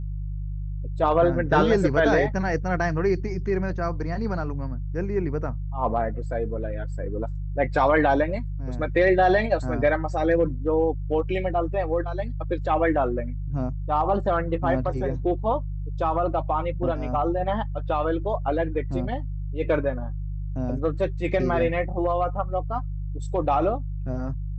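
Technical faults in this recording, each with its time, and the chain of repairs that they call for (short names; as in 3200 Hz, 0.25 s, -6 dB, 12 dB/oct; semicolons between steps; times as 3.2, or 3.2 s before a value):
hum 50 Hz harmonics 3 -30 dBFS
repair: de-hum 50 Hz, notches 3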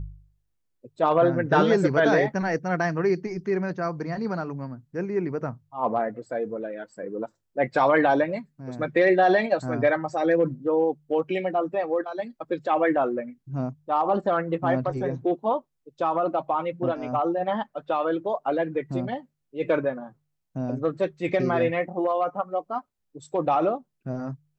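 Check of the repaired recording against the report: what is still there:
none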